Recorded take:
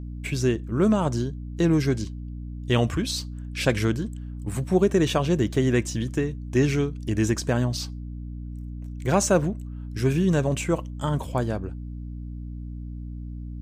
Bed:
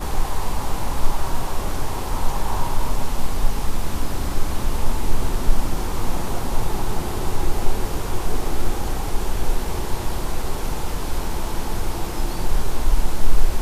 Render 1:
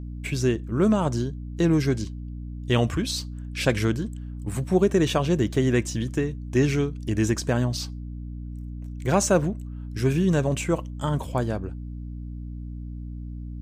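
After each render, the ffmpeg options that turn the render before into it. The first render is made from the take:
-af anull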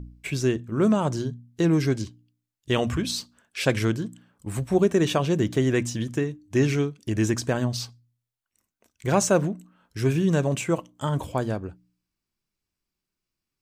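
-af "bandreject=f=60:t=h:w=4,bandreject=f=120:t=h:w=4,bandreject=f=180:t=h:w=4,bandreject=f=240:t=h:w=4,bandreject=f=300:t=h:w=4"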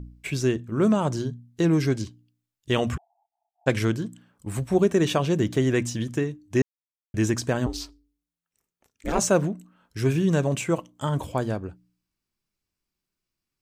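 -filter_complex "[0:a]asplit=3[a][b][c];[a]afade=t=out:st=2.96:d=0.02[d];[b]asuperpass=centerf=770:order=8:qfactor=4.3,afade=t=in:st=2.96:d=0.02,afade=t=out:st=3.66:d=0.02[e];[c]afade=t=in:st=3.66:d=0.02[f];[d][e][f]amix=inputs=3:normalize=0,asettb=1/sr,asplit=3[g][h][i];[g]atrim=end=7.664[j];[h]atrim=start=7.66:end=9.19,asetpts=PTS-STARTPTS,afade=t=in:d=0.004:c=qsin,afade=t=out:st=1.526:d=0.004:c=qsin,aeval=exprs='val(0)*sin(2*PI*170*n/s)':c=same[k];[i]atrim=start=9.186[l];[j][k]acrossfade=d=0.004:c1=hsin:c2=qsin[m];[m][l]acrossfade=d=0.004:c1=qsin:c2=hsin,asplit=3[n][o][p];[n]atrim=end=6.62,asetpts=PTS-STARTPTS,afade=t=out:st=6.616:d=0.004:c=hsin[q];[o]atrim=start=6.62:end=7.14,asetpts=PTS-STARTPTS,volume=0[r];[p]atrim=start=7.14,asetpts=PTS-STARTPTS,afade=t=in:d=0.004:c=hsin[s];[q][r][s]concat=n=3:v=0:a=1"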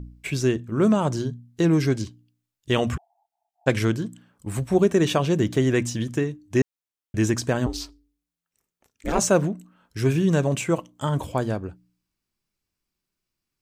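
-af "volume=1.5dB"

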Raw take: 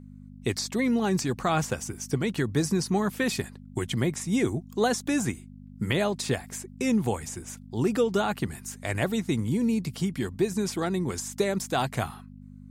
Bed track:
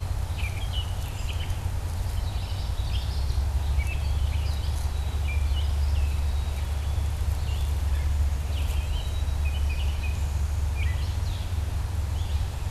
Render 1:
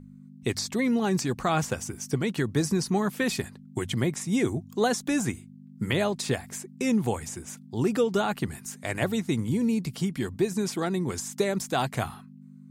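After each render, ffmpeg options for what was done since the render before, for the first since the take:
-af "bandreject=f=50:t=h:w=4,bandreject=f=100:t=h:w=4"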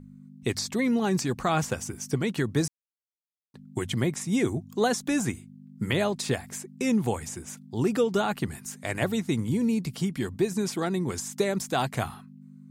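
-filter_complex "[0:a]asplit=3[a][b][c];[a]atrim=end=2.68,asetpts=PTS-STARTPTS,afade=t=out:st=2.676:d=0.004:c=hsin[d];[b]atrim=start=2.68:end=3.54,asetpts=PTS-STARTPTS,volume=0[e];[c]atrim=start=3.54,asetpts=PTS-STARTPTS,afade=t=in:d=0.004:c=hsin[f];[d][e][f]concat=n=3:v=0:a=1"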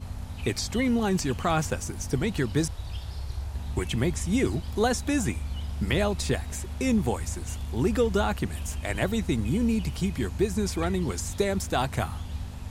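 -filter_complex "[1:a]volume=-7.5dB[a];[0:a][a]amix=inputs=2:normalize=0"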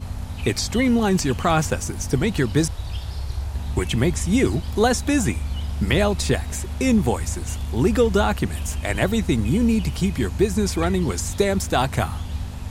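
-af "volume=6dB"

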